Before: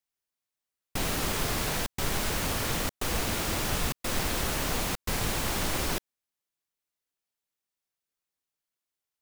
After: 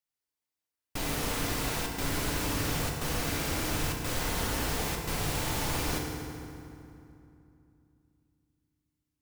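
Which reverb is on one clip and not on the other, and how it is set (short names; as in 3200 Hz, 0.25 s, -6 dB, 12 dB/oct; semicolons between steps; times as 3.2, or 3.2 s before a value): FDN reverb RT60 2.7 s, low-frequency decay 1.4×, high-frequency decay 0.65×, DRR 0.5 dB; gain -4.5 dB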